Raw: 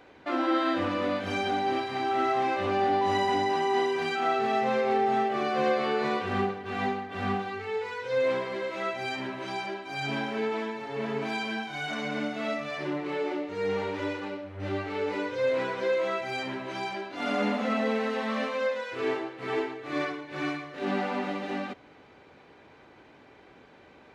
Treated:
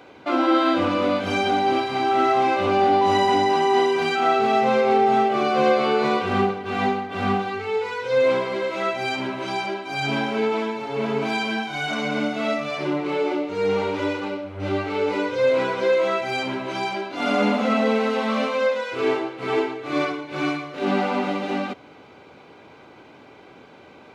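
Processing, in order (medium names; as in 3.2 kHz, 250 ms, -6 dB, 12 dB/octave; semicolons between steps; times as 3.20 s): high-pass 85 Hz; band-stop 1.8 kHz, Q 6; trim +7.5 dB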